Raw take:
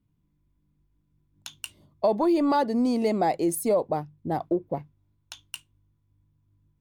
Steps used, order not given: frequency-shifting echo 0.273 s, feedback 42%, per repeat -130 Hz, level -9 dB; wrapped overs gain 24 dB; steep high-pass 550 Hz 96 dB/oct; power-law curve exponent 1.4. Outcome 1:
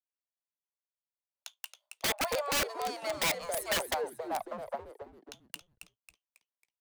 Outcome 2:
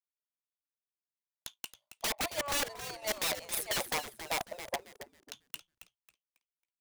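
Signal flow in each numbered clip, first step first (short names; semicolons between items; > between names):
power-law curve > steep high-pass > frequency-shifting echo > wrapped overs; steep high-pass > wrapped overs > frequency-shifting echo > power-law curve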